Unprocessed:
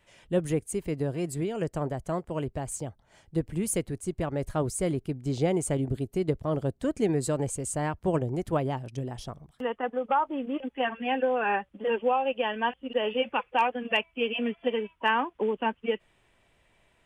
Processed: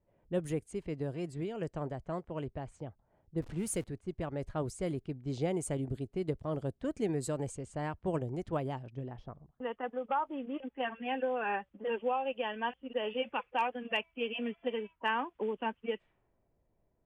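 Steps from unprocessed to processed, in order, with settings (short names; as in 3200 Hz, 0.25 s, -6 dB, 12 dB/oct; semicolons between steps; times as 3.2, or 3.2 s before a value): 3.42–3.84 zero-crossing step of -40 dBFS; low-pass opened by the level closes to 550 Hz, open at -24 dBFS; gain -7 dB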